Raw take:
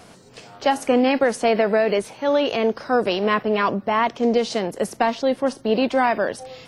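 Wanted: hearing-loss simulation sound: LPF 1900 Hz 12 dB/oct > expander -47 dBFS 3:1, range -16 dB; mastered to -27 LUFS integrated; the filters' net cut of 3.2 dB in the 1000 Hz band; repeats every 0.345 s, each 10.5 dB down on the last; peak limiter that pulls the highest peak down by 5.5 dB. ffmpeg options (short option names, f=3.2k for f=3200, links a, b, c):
-af "equalizer=f=1k:t=o:g=-4,alimiter=limit=-12.5dB:level=0:latency=1,lowpass=1.9k,aecho=1:1:345|690|1035:0.299|0.0896|0.0269,agate=range=-16dB:threshold=-47dB:ratio=3,volume=-3.5dB"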